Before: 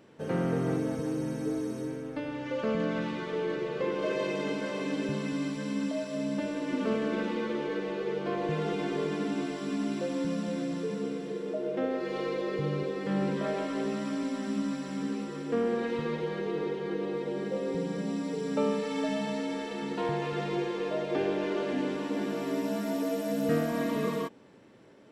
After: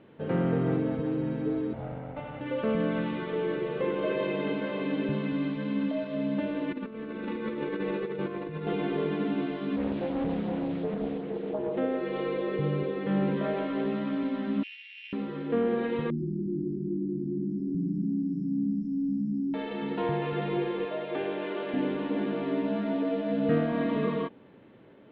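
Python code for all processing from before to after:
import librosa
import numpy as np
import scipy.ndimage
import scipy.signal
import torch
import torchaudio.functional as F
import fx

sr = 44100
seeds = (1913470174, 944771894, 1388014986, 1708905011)

y = fx.chain(x, sr, fx.lower_of_two(delay_ms=1.4),
    fx.highpass(hz=66.0, slope=12),
    fx.air_absorb(metres=260.0), at=(1.73, 2.41))
y = fx.chain(y, sr, fx.notch(hz=3100.0, q=9.6),
    fx.over_compress(threshold_db=-34.0, ratio=-0.5),
    fx.peak_eq(hz=690.0, db=-7.5, octaves=0.42), at=(6.71, 8.67))
y = fx.chain(y, sr, fx.filter_lfo_notch(shape='sine', hz=2.8, low_hz=790.0, high_hz=4500.0, q=2.1),
    fx.doppler_dist(depth_ms=0.7), at=(9.76, 11.78))
y = fx.chain(y, sr, fx.sample_sort(block=16),
    fx.steep_highpass(hz=2000.0, slope=48), at=(14.63, 15.13))
y = fx.chain(y, sr, fx.brickwall_bandstop(low_hz=370.0, high_hz=4900.0),
    fx.env_flatten(amount_pct=50), at=(16.1, 19.54))
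y = fx.chain(y, sr, fx.highpass(hz=60.0, slope=12),
    fx.low_shelf(hz=380.0, db=-10.0), at=(20.85, 21.74))
y = scipy.signal.sosfilt(scipy.signal.butter(8, 3700.0, 'lowpass', fs=sr, output='sos'), y)
y = fx.low_shelf(y, sr, hz=420.0, db=3.5)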